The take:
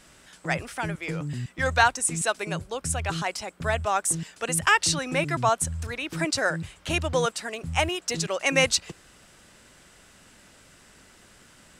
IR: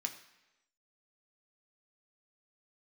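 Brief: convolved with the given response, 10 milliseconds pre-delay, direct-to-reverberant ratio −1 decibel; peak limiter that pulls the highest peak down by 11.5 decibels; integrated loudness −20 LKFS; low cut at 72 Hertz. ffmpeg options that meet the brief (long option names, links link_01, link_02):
-filter_complex "[0:a]highpass=72,alimiter=limit=-15.5dB:level=0:latency=1,asplit=2[link_01][link_02];[1:a]atrim=start_sample=2205,adelay=10[link_03];[link_02][link_03]afir=irnorm=-1:irlink=0,volume=1dB[link_04];[link_01][link_04]amix=inputs=2:normalize=0,volume=5.5dB"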